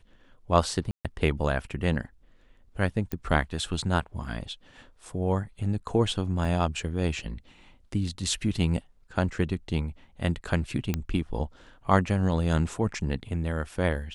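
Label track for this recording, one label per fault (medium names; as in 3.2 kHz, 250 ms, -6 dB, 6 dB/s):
0.910000	1.050000	dropout 137 ms
3.120000	3.120000	pop -16 dBFS
6.450000	6.450000	dropout 3.2 ms
10.940000	10.940000	pop -13 dBFS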